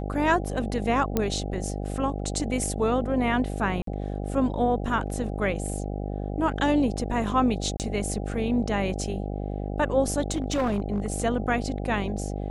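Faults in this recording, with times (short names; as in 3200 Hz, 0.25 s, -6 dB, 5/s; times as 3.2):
buzz 50 Hz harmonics 16 -31 dBFS
1.17 pop -10 dBFS
3.82–3.87 gap 53 ms
7.77–7.8 gap 28 ms
10.31–11.14 clipped -20.5 dBFS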